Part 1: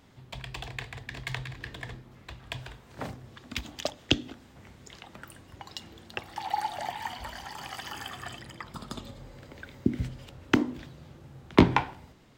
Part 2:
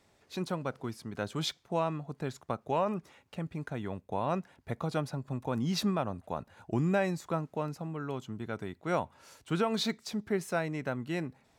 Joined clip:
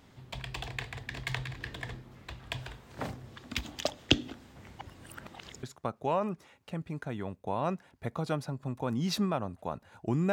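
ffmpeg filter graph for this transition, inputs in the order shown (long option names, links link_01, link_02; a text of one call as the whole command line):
ffmpeg -i cue0.wav -i cue1.wav -filter_complex "[0:a]apad=whole_dur=10.32,atrim=end=10.32,asplit=2[link_01][link_02];[link_01]atrim=end=4.792[link_03];[link_02]atrim=start=4.788:end=5.632,asetpts=PTS-STARTPTS,areverse[link_04];[1:a]atrim=start=2.278:end=6.97[link_05];[link_03][link_04]acrossfade=duration=0.004:curve1=hsin:curve2=hsin[link_06];[link_06][link_05]acrossfade=duration=0.004:curve1=hsin:curve2=hsin" out.wav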